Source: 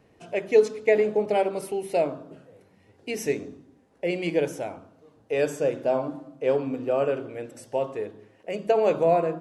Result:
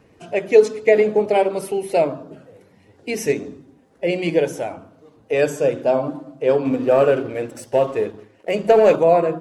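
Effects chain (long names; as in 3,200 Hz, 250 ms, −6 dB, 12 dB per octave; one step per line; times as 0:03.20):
spectral magnitudes quantised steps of 15 dB
0:06.65–0:08.96: leveller curve on the samples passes 1
level +6.5 dB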